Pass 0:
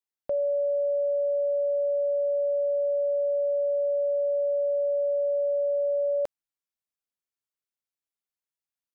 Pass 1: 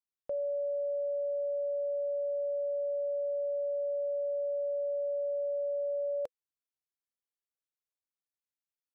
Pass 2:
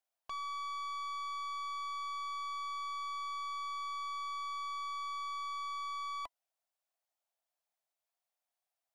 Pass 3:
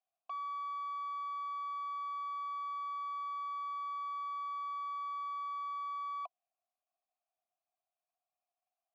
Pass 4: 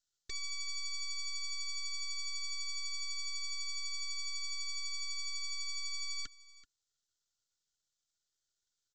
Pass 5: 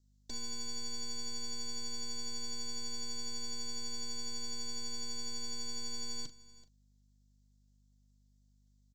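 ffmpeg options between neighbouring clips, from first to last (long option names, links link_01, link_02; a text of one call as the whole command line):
ffmpeg -i in.wav -af "equalizer=frequency=500:width=6.3:gain=6.5,volume=-9dB" out.wav
ffmpeg -i in.wav -af "aeval=exprs='abs(val(0))':channel_layout=same,highpass=frequency=680:width_type=q:width=4.9,aeval=exprs='(tanh(158*val(0)+0.35)-tanh(0.35))/158':channel_layout=same,volume=5dB" out.wav
ffmpeg -i in.wav -filter_complex "[0:a]asplit=3[link_01][link_02][link_03];[link_01]bandpass=frequency=730:width_type=q:width=8,volume=0dB[link_04];[link_02]bandpass=frequency=1090:width_type=q:width=8,volume=-6dB[link_05];[link_03]bandpass=frequency=2440:width_type=q:width=8,volume=-9dB[link_06];[link_04][link_05][link_06]amix=inputs=3:normalize=0,volume=7dB" out.wav
ffmpeg -i in.wav -af "aresample=16000,aeval=exprs='abs(val(0))':channel_layout=same,aresample=44100,aexciter=amount=5.8:drive=6.4:freq=3400,aecho=1:1:382:0.112" out.wav
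ffmpeg -i in.wav -filter_complex "[0:a]aeval=exprs='val(0)+0.000355*(sin(2*PI*50*n/s)+sin(2*PI*2*50*n/s)/2+sin(2*PI*3*50*n/s)/3+sin(2*PI*4*50*n/s)/4+sin(2*PI*5*50*n/s)/5)':channel_layout=same,acrossover=split=440|3100[link_01][link_02][link_03];[link_02]acrusher=samples=35:mix=1:aa=0.000001[link_04];[link_01][link_04][link_03]amix=inputs=3:normalize=0,asplit=2[link_05][link_06];[link_06]adelay=40,volume=-11dB[link_07];[link_05][link_07]amix=inputs=2:normalize=0" out.wav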